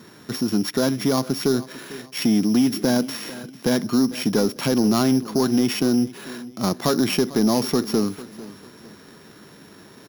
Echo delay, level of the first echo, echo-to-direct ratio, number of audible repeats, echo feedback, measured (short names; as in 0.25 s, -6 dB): 0.448 s, -18.0 dB, -17.5 dB, 2, 36%